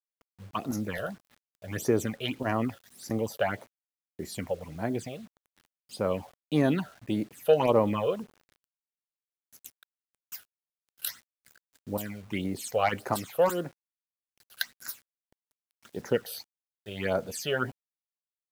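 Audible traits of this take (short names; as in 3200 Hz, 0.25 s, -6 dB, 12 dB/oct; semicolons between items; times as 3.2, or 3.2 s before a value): phasing stages 8, 1.7 Hz, lowest notch 260–3100 Hz; a quantiser's noise floor 10-bit, dither none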